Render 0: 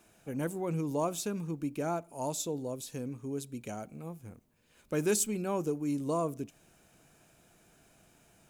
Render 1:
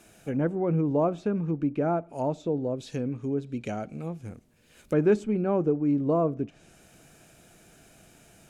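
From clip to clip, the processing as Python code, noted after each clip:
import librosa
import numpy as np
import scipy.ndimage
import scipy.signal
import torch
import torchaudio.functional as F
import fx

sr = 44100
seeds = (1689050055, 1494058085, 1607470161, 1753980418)

y = fx.env_lowpass_down(x, sr, base_hz=1400.0, full_db=-32.0)
y = fx.peak_eq(y, sr, hz=1000.0, db=-6.0, octaves=0.43)
y = F.gain(torch.from_numpy(y), 8.0).numpy()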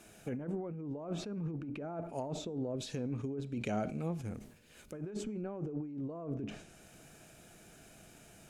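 y = fx.over_compress(x, sr, threshold_db=-32.0, ratio=-1.0)
y = fx.comb_fb(y, sr, f0_hz=210.0, decay_s=0.52, harmonics='all', damping=0.0, mix_pct=40)
y = fx.sustainer(y, sr, db_per_s=88.0)
y = F.gain(torch.from_numpy(y), -3.0).numpy()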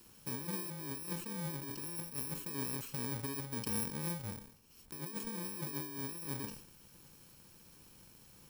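y = fx.bit_reversed(x, sr, seeds[0], block=64)
y = F.gain(torch.from_numpy(y), -2.0).numpy()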